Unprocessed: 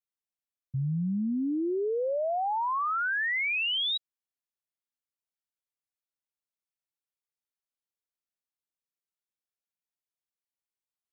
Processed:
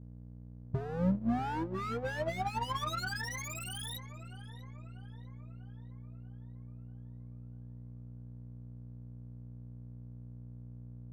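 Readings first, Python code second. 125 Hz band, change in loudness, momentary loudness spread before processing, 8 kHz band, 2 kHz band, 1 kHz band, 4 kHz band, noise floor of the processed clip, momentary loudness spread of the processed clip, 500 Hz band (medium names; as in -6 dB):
0.0 dB, -11.5 dB, 5 LU, no reading, -11.0 dB, -6.0 dB, -12.5 dB, -49 dBFS, 16 LU, -8.0 dB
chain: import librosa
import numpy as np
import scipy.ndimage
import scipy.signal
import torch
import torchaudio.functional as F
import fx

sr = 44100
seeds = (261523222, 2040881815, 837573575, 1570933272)

y = fx.hum_notches(x, sr, base_hz=60, count=2)
y = y + 0.77 * np.pad(y, (int(7.1 * sr / 1000.0), 0))[:len(y)]
y = 10.0 ** (-28.5 / 20.0) * (np.abs((y / 10.0 ** (-28.5 / 20.0) + 3.0) % 4.0 - 2.0) - 1.0)
y = fx.high_shelf(y, sr, hz=2300.0, db=-6.5)
y = fx.dmg_buzz(y, sr, base_hz=60.0, harmonics=5, level_db=-46.0, tilt_db=-4, odd_only=False)
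y = fx.graphic_eq_15(y, sr, hz=(100, 400, 2500), db=(9, -6, -5))
y = fx.power_curve(y, sr, exponent=1.4)
y = fx.echo_filtered(y, sr, ms=642, feedback_pct=55, hz=2600.0, wet_db=-11)
y = fx.upward_expand(y, sr, threshold_db=-43.0, expansion=1.5)
y = y * librosa.db_to_amplitude(6.5)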